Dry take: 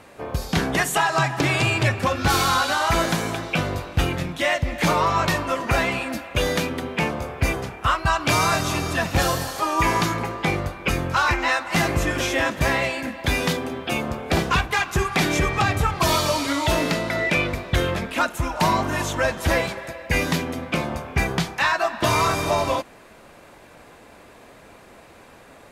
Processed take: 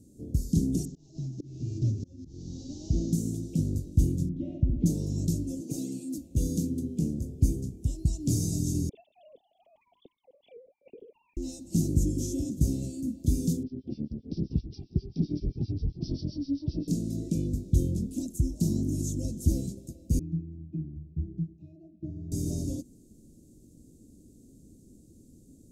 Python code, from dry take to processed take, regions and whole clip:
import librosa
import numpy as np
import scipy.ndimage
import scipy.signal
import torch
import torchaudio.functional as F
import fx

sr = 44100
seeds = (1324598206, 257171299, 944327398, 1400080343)

y = fx.chain(x, sr, fx.cvsd(bps=32000),
    fx.auto_swell(attack_ms=635.0), at=(0.85, 3.13))
y = fx.chain(y, sr, fx.lowpass(hz=2500.0, slope=24),
    fx.room_flutter(wall_m=11.7, rt60_s=0.65), at=(4.29, 4.86))
y = fx.chain(y, sr, fx.highpass(hz=270.0, slope=12),
    fx.comb(ms=6.6, depth=0.7), at=(5.61, 6.18))
y = fx.chain(y, sr, fx.sine_speech(),
    fx.notch(hz=320.0, q=5.9), at=(8.89, 11.37))
y = fx.chain(y, sr, fx.harmonic_tremolo(hz=7.6, depth_pct=100, crossover_hz=2300.0),
    fx.resample_bad(factor=4, down='none', up='filtered'), at=(13.63, 16.88))
y = fx.chain(y, sr, fx.highpass(hz=82.0, slope=12),
    fx.air_absorb(metres=98.0),
    fx.octave_resonator(note='D#', decay_s=0.15), at=(20.19, 22.32))
y = scipy.signal.sosfilt(scipy.signal.cheby1(3, 1.0, [290.0, 6700.0], 'bandstop', fs=sr, output='sos'), y)
y = fx.high_shelf(y, sr, hz=7400.0, db=-9.0)